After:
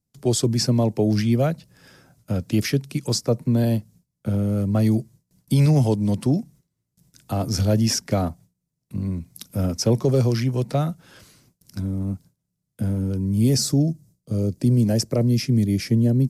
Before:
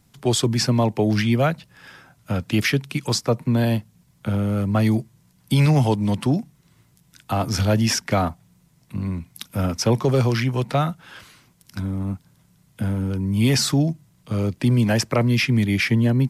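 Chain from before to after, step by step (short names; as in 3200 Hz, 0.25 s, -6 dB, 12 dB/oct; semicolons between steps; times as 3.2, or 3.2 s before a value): band shelf 1700 Hz -9 dB 2.5 oct, from 13.35 s -15.5 dB; gate with hold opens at -45 dBFS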